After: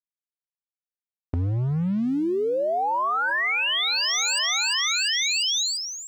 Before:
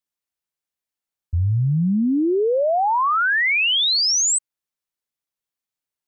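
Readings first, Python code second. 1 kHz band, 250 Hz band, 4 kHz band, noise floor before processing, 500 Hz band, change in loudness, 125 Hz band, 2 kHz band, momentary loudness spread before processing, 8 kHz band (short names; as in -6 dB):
-4.5 dB, -5.0 dB, -0.5 dB, under -85 dBFS, -5.0 dB, -4.5 dB, -5.0 dB, -2.5 dB, 6 LU, -4.0 dB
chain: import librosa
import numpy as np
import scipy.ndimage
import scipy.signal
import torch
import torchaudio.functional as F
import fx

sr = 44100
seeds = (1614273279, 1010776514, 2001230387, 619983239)

p1 = fx.bandpass_edges(x, sr, low_hz=500.0, high_hz=3000.0)
p2 = np.sign(p1) * np.maximum(np.abs(p1) - 10.0 ** (-53.0 / 20.0), 0.0)
p3 = fx.notch(p2, sr, hz=1600.0, q=17.0)
p4 = p3 + fx.echo_feedback(p3, sr, ms=347, feedback_pct=49, wet_db=-11.0, dry=0)
p5 = fx.env_flatten(p4, sr, amount_pct=100)
y = p5 * librosa.db_to_amplitude(-5.0)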